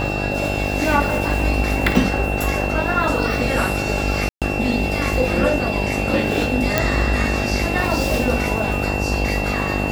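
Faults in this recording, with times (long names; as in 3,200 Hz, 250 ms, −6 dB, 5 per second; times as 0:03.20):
mains buzz 50 Hz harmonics 17 −24 dBFS
whistle 2,700 Hz −26 dBFS
0:04.29–0:04.42: drop-out 127 ms
0:06.78: click −1 dBFS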